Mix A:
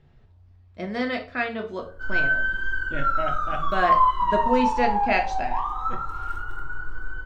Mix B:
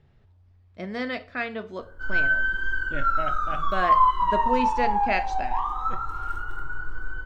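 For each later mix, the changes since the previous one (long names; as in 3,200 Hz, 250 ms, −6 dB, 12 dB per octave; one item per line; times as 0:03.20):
speech: send −9.0 dB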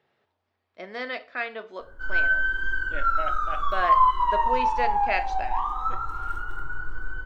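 speech: add band-pass filter 450–5,600 Hz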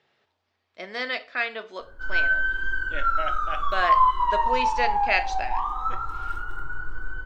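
speech: add high-shelf EQ 2,300 Hz +10.5 dB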